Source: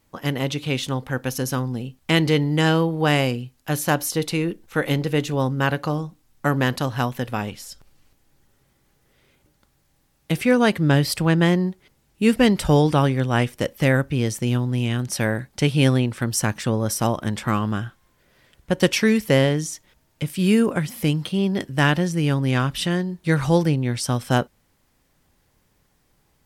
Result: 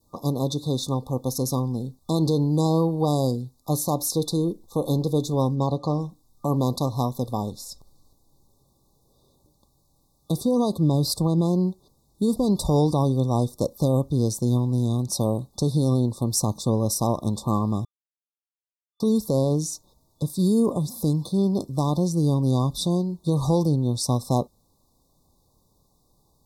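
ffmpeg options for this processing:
-filter_complex "[0:a]asplit=3[a][b][c];[a]afade=t=out:st=5.55:d=0.02[d];[b]lowpass=6.3k,afade=t=in:st=5.55:d=0.02,afade=t=out:st=5.99:d=0.02[e];[c]afade=t=in:st=5.99:d=0.02[f];[d][e][f]amix=inputs=3:normalize=0,asplit=3[g][h][i];[g]atrim=end=17.85,asetpts=PTS-STARTPTS,afade=t=out:st=17.846:d=0.004:c=hsin[j];[h]atrim=start=17.85:end=19,asetpts=PTS-STARTPTS,volume=0[k];[i]atrim=start=19,asetpts=PTS-STARTPTS,afade=t=in:d=0.004:c=hsin[l];[j][k][l]concat=n=3:v=0:a=1,adynamicequalizer=threshold=0.0141:dfrequency=1400:dqfactor=1.1:tfrequency=1400:tqfactor=1.1:attack=5:release=100:ratio=0.375:range=2:mode=cutabove:tftype=bell,alimiter=limit=-12dB:level=0:latency=1:release=43,afftfilt=real='re*(1-between(b*sr/4096,1200,3500))':imag='im*(1-between(b*sr/4096,1200,3500))':win_size=4096:overlap=0.75"

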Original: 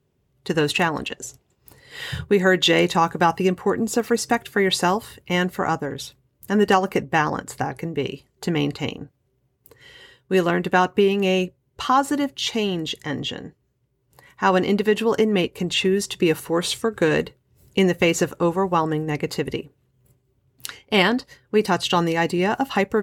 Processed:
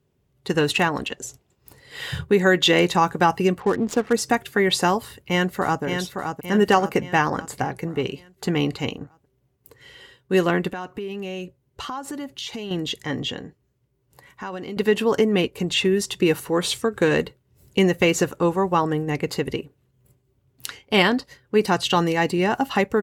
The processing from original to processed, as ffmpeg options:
-filter_complex "[0:a]asettb=1/sr,asplit=3[a][b][c];[a]atrim=end=3.604[d];[b]atrim=start=3.6:end=4.13,asetpts=PTS-STARTPTS,afade=t=in:d=0.004:c=qsin,afade=t=out:st=0.526:d=0.004:c=qsin,adynamicsmooth=sensitivity=7.5:basefreq=630[e];[c]atrim=start=4.126[f];[d][e]acrossfade=d=0.004:c1=hsin:c2=qsin[g];[g][f]acrossfade=d=0.004:c1=qsin:c2=hsin,asplit=2[h][i];[i]afade=t=in:st=5.04:d=0.01,afade=t=out:st=5.83:d=0.01,aecho=0:1:570|1140|1710|2280|2850|3420:0.501187|0.250594|0.125297|0.0626484|0.0313242|0.0156621[j];[h][j]amix=inputs=2:normalize=0,asettb=1/sr,asplit=3[k][l][m];[k]atrim=end=10.714[n];[l]atrim=start=10.71:end=12.71,asetpts=PTS-STARTPTS,afade=t=in:d=0.004:c=qsin,afade=t=out:st=1.996:d=0.004:c=qsin,acompressor=threshold=-29dB:ratio=5:attack=3.2:release=140:knee=1:detection=peak[o];[m]atrim=start=12.706[p];[n][o]acrossfade=d=0.004:c1=hsin:c2=qsin[q];[q][p]acrossfade=d=0.004:c1=qsin:c2=hsin,asettb=1/sr,asplit=3[r][s][t];[r]atrim=end=13.444[u];[s]atrim=start=13.44:end=14.77,asetpts=PTS-STARTPTS,afade=t=in:d=0.004:c=qsin,afade=t=out:st=1.326:d=0.004:c=qsin,acompressor=threshold=-33dB:ratio=3:attack=3.2:release=140:knee=1:detection=peak[v];[t]atrim=start=14.766[w];[u][v]acrossfade=d=0.004:c1=hsin:c2=qsin[x];[x][w]acrossfade=d=0.004:c1=qsin:c2=hsin"

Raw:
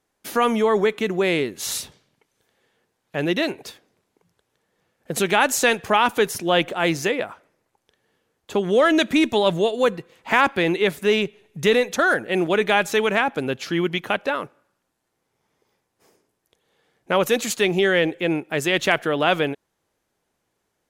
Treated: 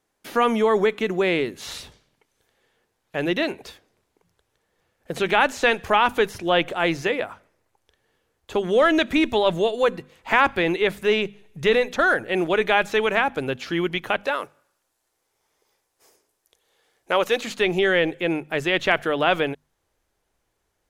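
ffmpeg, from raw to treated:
-filter_complex "[0:a]asettb=1/sr,asplit=3[a][b][c];[a]atrim=end=14.234[d];[b]atrim=start=14.23:end=17.41,asetpts=PTS-STARTPTS,afade=t=in:d=0.004:c=qsin,afade=t=out:st=3.176:d=0.004:c=qsin,bass=f=250:g=-10,treble=f=4k:g=6[e];[c]atrim=start=17.406[f];[d][e]acrossfade=d=0.004:c1=hsin:c2=qsin[g];[g][f]acrossfade=d=0.004:c1=qsin:c2=hsin,bandreject=f=50:t=h:w=6,bandreject=f=100:t=h:w=6,bandreject=f=150:t=h:w=6,bandreject=f=200:t=h:w=6,bandreject=f=250:t=h:w=6,acrossover=split=4200[h][i];[i]acompressor=threshold=-44dB:ratio=4:attack=1:release=60[j];[h][j]amix=inputs=2:normalize=0,asubboost=boost=5:cutoff=72"

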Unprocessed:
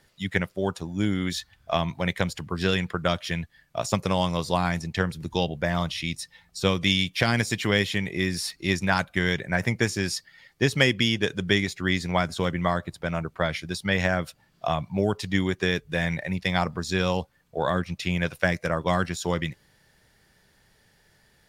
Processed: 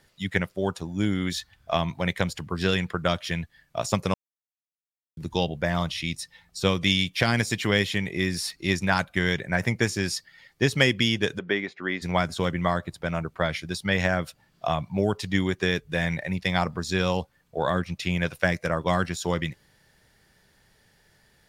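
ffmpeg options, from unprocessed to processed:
-filter_complex "[0:a]asplit=3[a][b][c];[a]afade=t=out:st=11.38:d=0.02[d];[b]highpass=300,lowpass=2.1k,afade=t=in:st=11.38:d=0.02,afade=t=out:st=12.01:d=0.02[e];[c]afade=t=in:st=12.01:d=0.02[f];[d][e][f]amix=inputs=3:normalize=0,asplit=3[g][h][i];[g]atrim=end=4.14,asetpts=PTS-STARTPTS,afade=t=out:st=4.136:d=0.004:c=hsin[j];[h]atrim=start=4.14:end=5.17,asetpts=PTS-STARTPTS,volume=0[k];[i]atrim=start=5.17,asetpts=PTS-STARTPTS,afade=t=in:d=0.004:c=hsin[l];[j][k][l]concat=n=3:v=0:a=1"

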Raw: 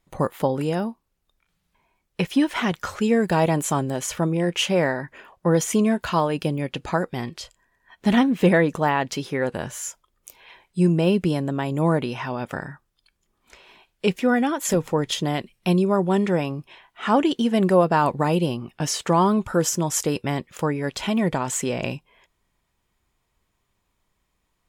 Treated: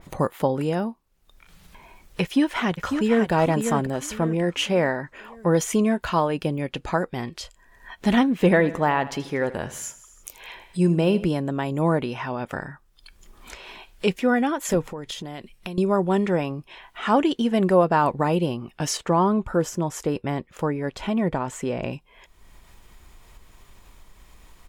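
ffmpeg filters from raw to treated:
-filter_complex "[0:a]asplit=2[a][b];[b]afade=t=in:st=2.22:d=0.01,afade=t=out:st=3.31:d=0.01,aecho=0:1:550|1100|1650|2200:0.473151|0.165603|0.057961|0.0202864[c];[a][c]amix=inputs=2:normalize=0,asettb=1/sr,asplit=3[d][e][f];[d]atrim=end=8.424[g];[e]atrim=start=8.42:end=11.27,asetpts=PTS-STARTPTS,afade=t=in:d=0.004:c=qsin,afade=t=out:st=2.846:d=0.004:c=qsin,aecho=1:1:80|160|240|320:0.158|0.0792|0.0396|0.0198,atrim=end_sample=125685[h];[f]atrim=start=11.266[i];[g][h]acrossfade=d=0.004:c1=hsin:c2=qsin[j];[j][i]acrossfade=d=0.004:c1=qsin:c2=hsin,asettb=1/sr,asplit=3[k][l][m];[k]atrim=end=14.894[n];[l]atrim=start=14.89:end=15.78,asetpts=PTS-STARTPTS,afade=t=in:d=0.004:c=qsin,afade=t=out:st=0.886:d=0.004:c=qsin,acompressor=threshold=-31dB:ratio=4:attack=3.2:release=140:knee=1:detection=peak[o];[m]atrim=start=15.776[p];[n][o]acrossfade=d=0.004:c1=hsin:c2=qsin[q];[q][p]acrossfade=d=0.004:c1=qsin:c2=hsin,asettb=1/sr,asplit=3[r][s][t];[r]atrim=end=18.974[u];[s]atrim=start=18.97:end=21.93,asetpts=PTS-STARTPTS,afade=t=in:d=0.004:c=qsin,afade=t=out:st=2.956:d=0.004:c=qsin,highshelf=f=2.2k:g=-9[v];[t]atrim=start=21.926[w];[u][v]acrossfade=d=0.004:c1=hsin:c2=qsin[x];[x][w]acrossfade=d=0.004:c1=qsin:c2=hsin,asubboost=boost=2.5:cutoff=62,acompressor=mode=upward:threshold=-31dB:ratio=2.5,adynamicequalizer=threshold=0.01:dfrequency=3000:dqfactor=0.7:tfrequency=3000:tqfactor=0.7:attack=5:release=100:ratio=0.375:range=3:mode=cutabove:tftype=highshelf"

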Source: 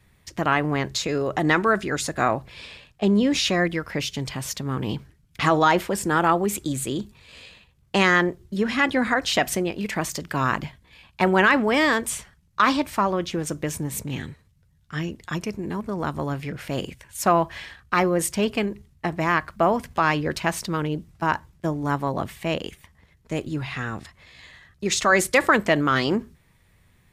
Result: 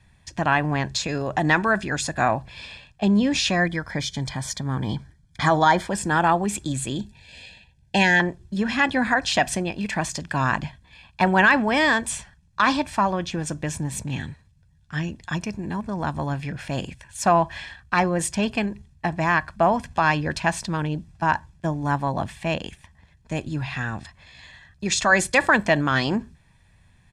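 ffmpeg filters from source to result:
-filter_complex "[0:a]asettb=1/sr,asplit=3[a][b][c];[a]atrim=end=3.604[d];[b]atrim=start=3.6:end=5.88,asetpts=PTS-STARTPTS,afade=t=in:d=0.004:c=qsin,afade=t=out:st=2.276:d=0.004:c=qsin,asuperstop=centerf=2700:order=12:qfactor=5.7[e];[c]atrim=start=5.876[f];[d][e]acrossfade=d=0.004:c1=hsin:c2=qsin[g];[g][f]acrossfade=d=0.004:c1=qsin:c2=hsin,asettb=1/sr,asplit=3[h][i][j];[h]atrim=end=6.964[k];[i]atrim=start=6.96:end=8.2,asetpts=PTS-STARTPTS,afade=t=in:d=0.004:c=qsin,afade=t=out:st=1.236:d=0.004:c=qsin,asuperstop=centerf=1200:order=12:qfactor=2.4[l];[j]atrim=start=8.196[m];[k][l]acrossfade=d=0.004:c1=hsin:c2=qsin[n];[n][m]acrossfade=d=0.004:c1=qsin:c2=hsin,lowpass=f=9.6k:w=0.5412,lowpass=f=9.6k:w=1.3066,aecho=1:1:1.2:0.49"

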